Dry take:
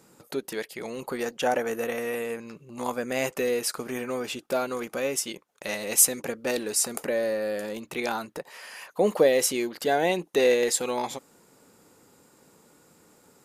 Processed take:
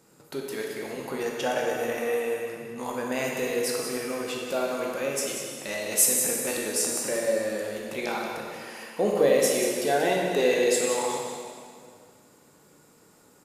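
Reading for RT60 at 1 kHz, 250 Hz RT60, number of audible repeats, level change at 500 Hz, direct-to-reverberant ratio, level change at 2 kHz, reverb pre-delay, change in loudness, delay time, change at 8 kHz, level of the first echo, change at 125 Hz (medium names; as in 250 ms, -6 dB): 2.1 s, 2.0 s, 1, +0.5 dB, -2.0 dB, +0.5 dB, 6 ms, 0.0 dB, 183 ms, +0.5 dB, -11.0 dB, +1.0 dB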